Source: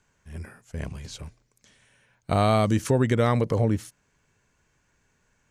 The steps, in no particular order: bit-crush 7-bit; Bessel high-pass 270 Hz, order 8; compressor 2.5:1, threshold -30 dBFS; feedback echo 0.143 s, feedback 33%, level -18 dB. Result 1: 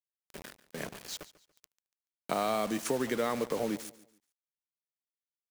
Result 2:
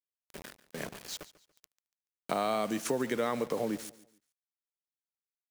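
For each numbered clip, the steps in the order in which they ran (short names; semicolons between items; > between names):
Bessel high-pass > compressor > bit-crush > feedback echo; Bessel high-pass > bit-crush > compressor > feedback echo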